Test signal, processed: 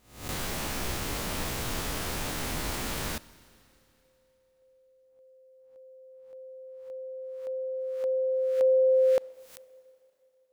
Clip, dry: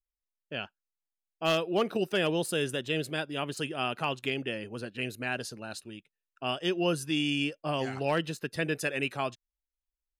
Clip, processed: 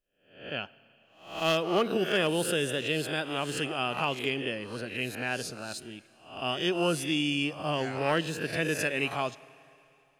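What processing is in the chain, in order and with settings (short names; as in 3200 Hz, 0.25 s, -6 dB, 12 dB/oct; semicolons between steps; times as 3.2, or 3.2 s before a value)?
spectral swells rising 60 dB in 0.52 s; Schroeder reverb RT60 3 s, combs from 27 ms, DRR 19.5 dB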